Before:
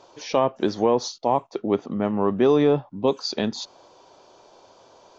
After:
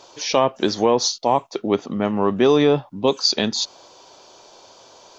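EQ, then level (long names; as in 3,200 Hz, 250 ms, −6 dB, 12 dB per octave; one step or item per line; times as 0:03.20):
high-shelf EQ 2,300 Hz +11 dB
+2.0 dB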